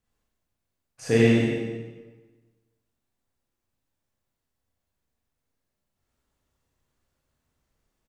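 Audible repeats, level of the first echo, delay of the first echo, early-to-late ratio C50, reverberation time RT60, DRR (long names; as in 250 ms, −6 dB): 1, −3.5 dB, 94 ms, −3.0 dB, 1.3 s, −6.5 dB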